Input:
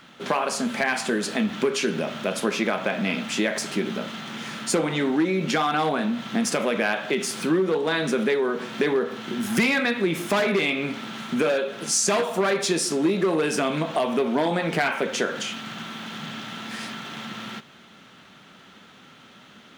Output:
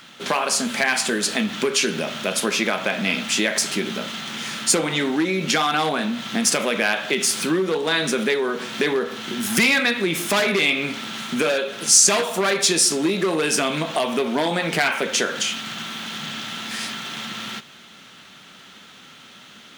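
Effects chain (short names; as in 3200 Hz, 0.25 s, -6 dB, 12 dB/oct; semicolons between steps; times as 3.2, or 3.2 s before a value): high shelf 2200 Hz +10.5 dB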